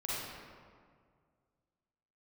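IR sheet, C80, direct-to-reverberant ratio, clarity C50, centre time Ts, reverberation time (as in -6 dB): -1.5 dB, -8.0 dB, -5.0 dB, 0.133 s, 2.0 s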